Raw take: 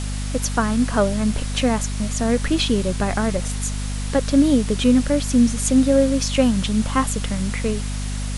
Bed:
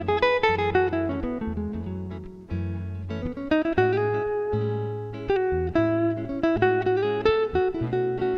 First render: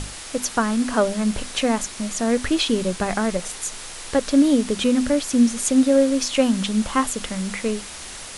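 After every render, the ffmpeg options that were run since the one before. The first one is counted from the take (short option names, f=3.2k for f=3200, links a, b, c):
-af "bandreject=f=50:t=h:w=6,bandreject=f=100:t=h:w=6,bandreject=f=150:t=h:w=6,bandreject=f=200:t=h:w=6,bandreject=f=250:t=h:w=6"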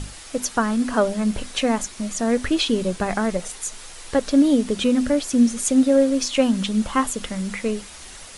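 -af "afftdn=nr=6:nf=-36"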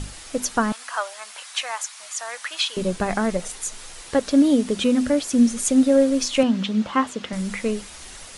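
-filter_complex "[0:a]asettb=1/sr,asplit=3[a][b][c];[a]atrim=end=0.724[d];[b]atrim=start=0.72:end=2.77,asetpts=PTS-STARTPTS,afade=t=in:d=0.004:c=qsin,afade=t=out:st=2.046:d=0.004:c=qsin,highpass=f=850:w=0.5412,highpass=f=850:w=1.3066[e];[c]atrim=start=2.766[f];[d][e]acrossfade=d=0.004:c1=hsin:c2=qsin[g];[g][f]acrossfade=d=0.004:c1=qsin:c2=hsin,asettb=1/sr,asplit=3[h][i][j];[h]atrim=end=4.014[k];[i]atrim=start=4.01:end=5.39,asetpts=PTS-STARTPTS,afade=t=in:d=0.004:c=qsin,afade=t=out:st=1.376:d=0.004:c=qsin,highpass=f=63:p=1[l];[j]atrim=start=5.386[m];[k][l]acrossfade=d=0.004:c1=hsin:c2=qsin[n];[n][m]acrossfade=d=0.004:c1=qsin:c2=hsin,asettb=1/sr,asplit=3[o][p][q];[o]atrim=end=6.434[r];[p]atrim=start=6.43:end=7.33,asetpts=PTS-STARTPTS,afade=t=in:d=0.004:c=qsin,afade=t=out:st=0.896:d=0.004:c=qsin,highpass=130,lowpass=4.4k[s];[q]atrim=start=7.326[t];[r][s]acrossfade=d=0.004:c1=hsin:c2=qsin[u];[u][t]acrossfade=d=0.004:c1=qsin:c2=hsin"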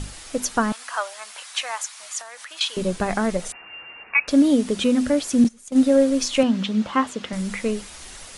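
-filter_complex "[0:a]asettb=1/sr,asplit=3[a][b][c];[a]atrim=end=2.214[d];[b]atrim=start=2.21:end=2.61,asetpts=PTS-STARTPTS,afade=t=in:d=0.004:c=qsin,afade=t=out:st=0.396:d=0.004:c=qsin,acompressor=threshold=-35dB:ratio=5:attack=3.2:release=140:knee=1:detection=peak[e];[c]atrim=start=2.606[f];[d][e]acrossfade=d=0.004:c1=hsin:c2=qsin[g];[g][f]acrossfade=d=0.004:c1=qsin:c2=hsin,asettb=1/sr,asplit=3[h][i][j];[h]atrim=end=3.524[k];[i]atrim=start=3.52:end=4.28,asetpts=PTS-STARTPTS,afade=t=in:d=0.004:c=qsin,afade=t=out:st=0.756:d=0.004:c=qsin,lowpass=f=2.4k:t=q:w=0.5098,lowpass=f=2.4k:t=q:w=0.6013,lowpass=f=2.4k:t=q:w=0.9,lowpass=f=2.4k:t=q:w=2.563,afreqshift=-2800[l];[j]atrim=start=4.276[m];[k][l]acrossfade=d=0.004:c1=hsin:c2=qsin[n];[n][m]acrossfade=d=0.004:c1=qsin:c2=hsin,asettb=1/sr,asplit=3[o][p][q];[o]atrim=end=5.444[r];[p]atrim=start=5.44:end=5.84,asetpts=PTS-STARTPTS,afade=t=in:d=0.004:c=qsin,afade=t=out:st=0.396:d=0.004:c=qsin,agate=range=-21dB:threshold=-19dB:ratio=16:release=100:detection=peak[s];[q]atrim=start=5.836[t];[r][s]acrossfade=d=0.004:c1=hsin:c2=qsin[u];[u][t]acrossfade=d=0.004:c1=qsin:c2=hsin"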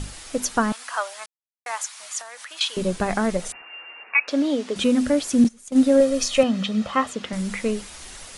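-filter_complex "[0:a]asettb=1/sr,asplit=3[a][b][c];[a]atrim=end=3.624[d];[b]atrim=start=3.62:end=4.76,asetpts=PTS-STARTPTS,afade=t=in:d=0.004:c=qsin,afade=t=out:st=1.136:d=0.004:c=qsin,highpass=380,lowpass=5.5k[e];[c]atrim=start=4.756[f];[d][e]acrossfade=d=0.004:c1=hsin:c2=qsin[g];[g][f]acrossfade=d=0.004:c1=qsin:c2=hsin,asettb=1/sr,asplit=3[h][i][j];[h]atrim=end=6.004[k];[i]atrim=start=6:end=7.13,asetpts=PTS-STARTPTS,afade=t=in:d=0.004:c=qsin,afade=t=out:st=1.126:d=0.004:c=qsin,aecho=1:1:1.6:0.5,atrim=end_sample=49833[l];[j]atrim=start=7.126[m];[k][l]acrossfade=d=0.004:c1=hsin:c2=qsin[n];[n][m]acrossfade=d=0.004:c1=qsin:c2=hsin,asplit=3[o][p][q];[o]atrim=end=1.26,asetpts=PTS-STARTPTS,afade=t=out:st=1.256:d=0.004:c=hsin[r];[p]atrim=start=1.26:end=1.66,asetpts=PTS-STARTPTS,volume=0[s];[q]atrim=start=1.66,asetpts=PTS-STARTPTS,afade=t=in:d=0.004:c=hsin[t];[r][s][t]concat=n=3:v=0:a=1"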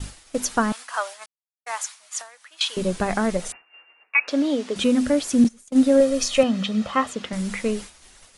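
-af "agate=range=-33dB:threshold=-31dB:ratio=3:detection=peak"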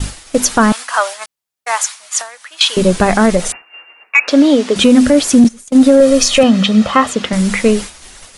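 -af "acontrast=42,alimiter=level_in=7.5dB:limit=-1dB:release=50:level=0:latency=1"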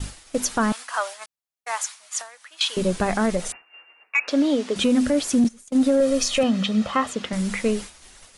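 -af "volume=-11dB"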